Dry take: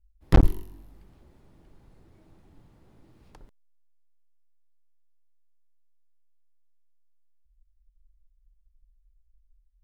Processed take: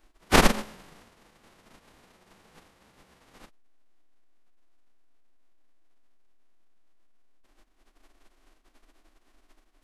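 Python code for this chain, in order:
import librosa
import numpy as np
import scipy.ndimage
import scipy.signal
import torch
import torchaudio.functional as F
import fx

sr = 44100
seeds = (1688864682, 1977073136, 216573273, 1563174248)

y = fx.envelope_flatten(x, sr, power=0.1)
y = fx.lowpass(y, sr, hz=1100.0, slope=6)
y = fx.pitch_keep_formants(y, sr, semitones=-9.5)
y = F.gain(torch.from_numpy(y), 6.0).numpy()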